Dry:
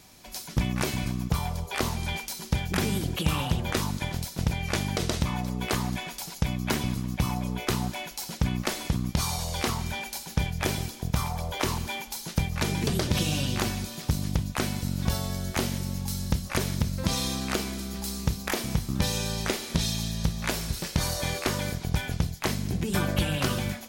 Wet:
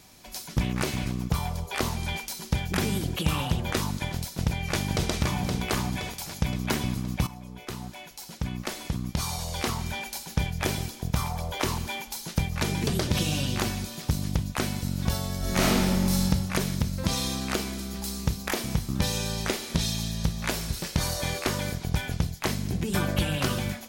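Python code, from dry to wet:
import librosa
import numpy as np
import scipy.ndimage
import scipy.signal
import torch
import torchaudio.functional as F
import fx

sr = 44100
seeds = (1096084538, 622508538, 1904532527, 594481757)

y = fx.doppler_dist(x, sr, depth_ms=0.23, at=(0.63, 1.26))
y = fx.echo_throw(y, sr, start_s=4.18, length_s=0.91, ms=520, feedback_pct=55, wet_db=-4.5)
y = fx.reverb_throw(y, sr, start_s=15.38, length_s=0.86, rt60_s=1.6, drr_db=-7.0)
y = fx.edit(y, sr, fx.fade_in_from(start_s=7.27, length_s=2.71, floor_db=-13.5), tone=tone)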